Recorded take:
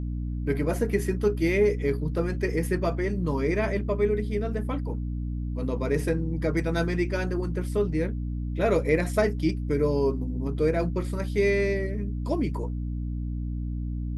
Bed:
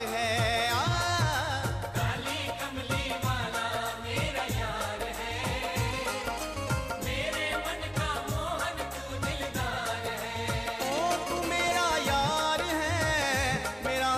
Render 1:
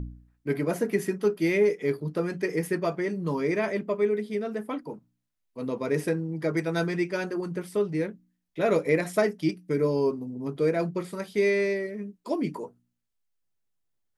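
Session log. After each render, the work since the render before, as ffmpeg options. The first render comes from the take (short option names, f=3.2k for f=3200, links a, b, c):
-af "bandreject=f=60:t=h:w=4,bandreject=f=120:t=h:w=4,bandreject=f=180:t=h:w=4,bandreject=f=240:t=h:w=4,bandreject=f=300:t=h:w=4"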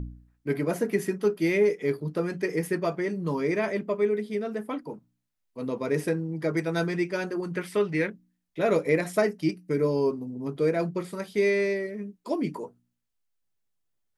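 -filter_complex "[0:a]asettb=1/sr,asplit=3[a][b][c];[a]atrim=end=7.534[d];[b]atrim=start=7.53:end=8.1,asetpts=PTS-STARTPTS,afade=t=in:d=0.004:c=qsin,afade=t=out:st=0.566:d=0.004:c=qsin,equalizer=f=2.1k:t=o:w=1.8:g=11[e];[c]atrim=start=8.096[f];[d][e]acrossfade=d=0.004:c1=hsin:c2=qsin[g];[g][f]acrossfade=d=0.004:c1=qsin:c2=hsin,asettb=1/sr,asplit=3[h][i][j];[h]atrim=end=9.184[k];[i]atrim=start=9.18:end=9.74,asetpts=PTS-STARTPTS,afade=t=in:d=0.004:c=qsin,afade=t=out:st=0.556:d=0.004:c=qsin,bandreject=f=3.4k:w=8.9[l];[j]atrim=start=9.736[m];[k][l]acrossfade=d=0.004:c1=hsin:c2=qsin[n];[n][m]acrossfade=d=0.004:c1=qsin:c2=hsin"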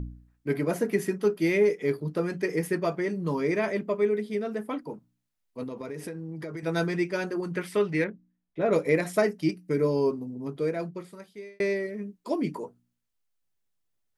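-filter_complex "[0:a]asettb=1/sr,asplit=3[a][b][c];[a]atrim=end=5.634[d];[b]atrim=start=5.63:end=6.63,asetpts=PTS-STARTPTS,afade=t=in:d=0.004:c=qsin,afade=t=out:st=0.996:d=0.004:c=qsin,acompressor=threshold=-32dB:ratio=16:attack=3.2:release=140:knee=1:detection=peak[e];[c]atrim=start=6.626[f];[d][e]acrossfade=d=0.004:c1=hsin:c2=qsin[g];[g][f]acrossfade=d=0.004:c1=qsin:c2=hsin,asettb=1/sr,asplit=3[h][i][j];[h]atrim=end=8.044[k];[i]atrim=start=8.04:end=8.73,asetpts=PTS-STARTPTS,afade=t=in:d=0.004:c=qsin,afade=t=out:st=0.686:d=0.004:c=qsin,lowpass=f=1.2k:p=1[l];[j]atrim=start=8.726[m];[k][l]acrossfade=d=0.004:c1=hsin:c2=qsin[n];[n][m]acrossfade=d=0.004:c1=qsin:c2=hsin,asplit=2[o][p];[o]atrim=end=11.6,asetpts=PTS-STARTPTS,afade=t=out:st=10.15:d=1.45[q];[p]atrim=start=11.6,asetpts=PTS-STARTPTS,afade=t=in:d=0.004:c=hsin[r];[q][r]concat=n=2:v=0:a=1"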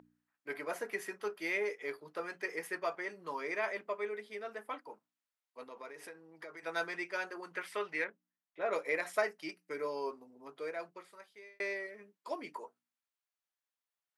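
-af "highpass=930,highshelf=f=2.8k:g=-9.5"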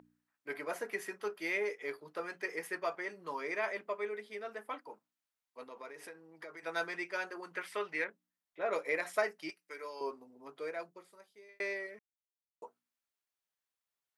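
-filter_complex "[0:a]asettb=1/sr,asplit=3[a][b][c];[a]atrim=end=9.504[d];[b]atrim=start=9.5:end=10.01,asetpts=PTS-STARTPTS,afade=t=in:d=0.004:c=qsin,afade=t=out:st=0.506:d=0.004:c=qsin,highpass=f=1.2k:p=1[e];[c]atrim=start=10.006[f];[d][e]acrossfade=d=0.004:c1=hsin:c2=qsin[g];[g][f]acrossfade=d=0.004:c1=qsin:c2=hsin,asettb=1/sr,asplit=3[h][i][j];[h]atrim=end=10.834[k];[i]atrim=start=10.83:end=11.49,asetpts=PTS-STARTPTS,afade=t=in:d=0.004:c=qsin,afade=t=out:st=0.656:d=0.004:c=qsin,equalizer=f=1.9k:w=0.56:g=-8.5[l];[j]atrim=start=11.486[m];[k][l]acrossfade=d=0.004:c1=hsin:c2=qsin[n];[n][m]acrossfade=d=0.004:c1=qsin:c2=hsin,asplit=3[o][p][q];[o]atrim=end=11.99,asetpts=PTS-STARTPTS,afade=t=out:st=11.986:d=0.004:c=hsin[r];[p]atrim=start=11.99:end=12.62,asetpts=PTS-STARTPTS,volume=0[s];[q]atrim=start=12.62,asetpts=PTS-STARTPTS,afade=t=in:d=0.004:c=hsin[t];[r][s][t]concat=n=3:v=0:a=1"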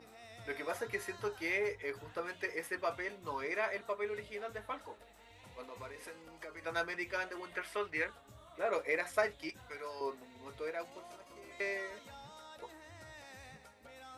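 -filter_complex "[1:a]volume=-25.5dB[a];[0:a][a]amix=inputs=2:normalize=0"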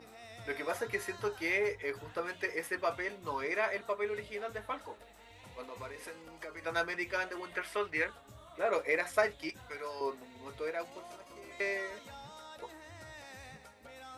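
-af "volume=3dB"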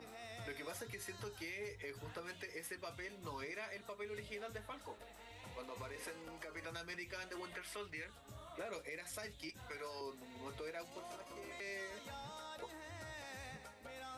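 -filter_complex "[0:a]acrossover=split=230|3000[a][b][c];[b]acompressor=threshold=-46dB:ratio=4[d];[a][d][c]amix=inputs=3:normalize=0,alimiter=level_in=12.5dB:limit=-24dB:level=0:latency=1:release=132,volume=-12.5dB"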